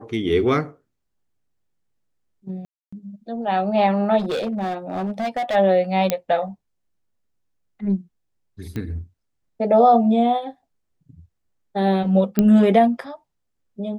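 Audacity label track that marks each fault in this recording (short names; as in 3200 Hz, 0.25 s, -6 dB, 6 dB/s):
2.650000	2.920000	gap 0.275 s
4.180000	5.560000	clipped -20.5 dBFS
6.100000	6.100000	pop -5 dBFS
8.760000	8.760000	pop -18 dBFS
12.390000	12.390000	pop -5 dBFS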